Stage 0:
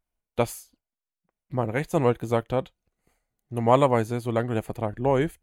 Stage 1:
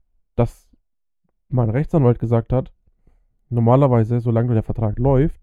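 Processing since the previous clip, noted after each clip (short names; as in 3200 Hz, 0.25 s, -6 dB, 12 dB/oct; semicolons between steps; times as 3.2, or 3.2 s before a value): tilt -4 dB/oct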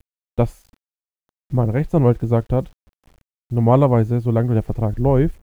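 bit-crush 9-bit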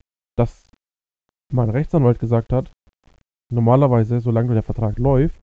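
downsampling 16000 Hz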